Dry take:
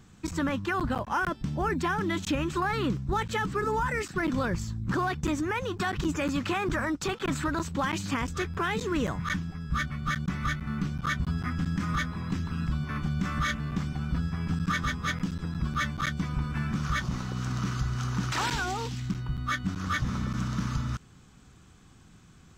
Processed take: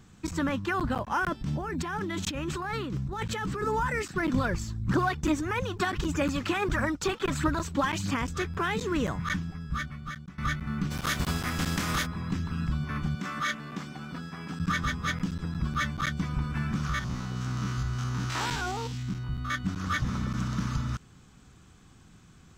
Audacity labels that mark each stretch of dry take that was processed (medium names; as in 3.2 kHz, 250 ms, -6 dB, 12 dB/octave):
1.320000	3.630000	compressor with a negative ratio -32 dBFS
4.340000	8.110000	phaser 1.6 Hz, delay 3.6 ms, feedback 43%
9.460000	10.380000	fade out, to -19.5 dB
10.900000	12.050000	spectral contrast reduction exponent 0.57
13.150000	14.600000	high-pass 260 Hz
16.890000	19.550000	spectrogram pixelated in time every 50 ms